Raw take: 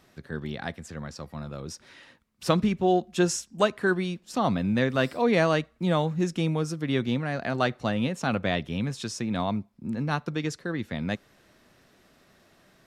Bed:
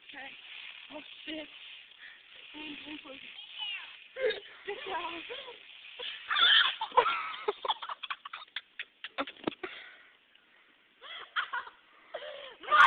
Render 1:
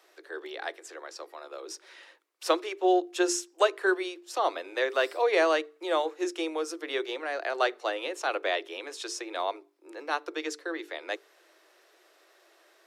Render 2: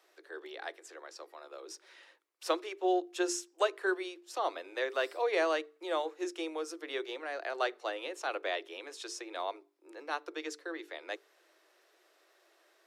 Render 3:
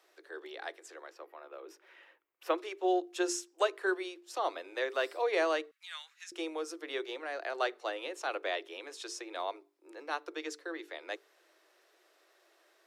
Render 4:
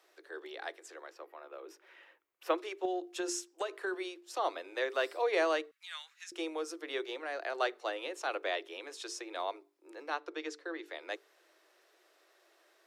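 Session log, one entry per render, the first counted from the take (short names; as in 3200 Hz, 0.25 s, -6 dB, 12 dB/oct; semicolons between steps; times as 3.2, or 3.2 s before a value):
steep high-pass 320 Hz 96 dB/oct; notches 50/100/150/200/250/300/350/400/450 Hz
gain -6 dB
1.1–2.58 band shelf 6200 Hz -13 dB; 5.71–6.32 inverse Chebyshev high-pass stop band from 270 Hz, stop band 80 dB
2.85–3.94 compressor, threshold -31 dBFS; 10.1–10.86 air absorption 58 m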